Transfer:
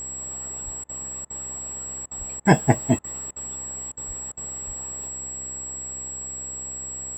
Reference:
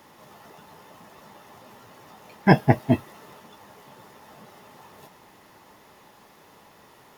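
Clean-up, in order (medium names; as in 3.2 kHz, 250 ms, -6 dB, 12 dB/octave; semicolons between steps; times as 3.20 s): de-hum 65.5 Hz, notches 11; band-stop 7.7 kHz, Q 30; de-plosive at 0.64/2.18/4.07/4.66 s; interpolate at 0.84/1.25/2.06/2.40/2.99/3.31/3.92/4.32 s, 50 ms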